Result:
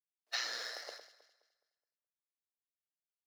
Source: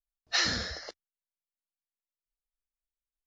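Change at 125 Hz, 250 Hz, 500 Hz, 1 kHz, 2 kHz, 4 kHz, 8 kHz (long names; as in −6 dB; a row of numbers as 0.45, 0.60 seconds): below −40 dB, −25.5 dB, −8.0 dB, −8.5 dB, −9.0 dB, −9.0 dB, can't be measured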